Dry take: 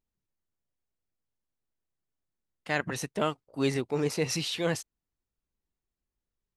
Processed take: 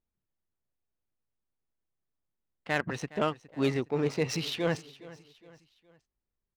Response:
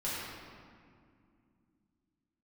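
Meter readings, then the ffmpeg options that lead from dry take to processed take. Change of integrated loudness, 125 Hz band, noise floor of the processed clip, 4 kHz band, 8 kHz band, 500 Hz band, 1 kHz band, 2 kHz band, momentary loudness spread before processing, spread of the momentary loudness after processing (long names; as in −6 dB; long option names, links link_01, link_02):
−0.5 dB, 0.0 dB, below −85 dBFS, −2.5 dB, −6.5 dB, 0.0 dB, 0.0 dB, −0.5 dB, 6 LU, 19 LU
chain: -af "adynamicsmooth=sensitivity=5:basefreq=2800,aecho=1:1:414|828|1242:0.112|0.0482|0.0207"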